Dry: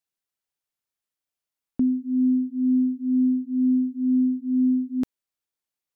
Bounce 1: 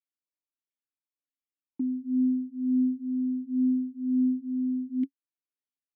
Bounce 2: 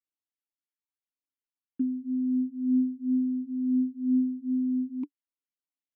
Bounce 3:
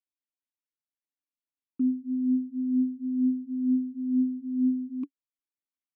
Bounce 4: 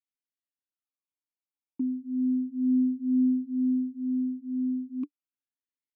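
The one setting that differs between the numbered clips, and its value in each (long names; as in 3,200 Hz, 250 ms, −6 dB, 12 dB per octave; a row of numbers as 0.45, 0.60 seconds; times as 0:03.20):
formant filter swept between two vowels, speed: 1.4, 2.9, 4.3, 0.33 Hertz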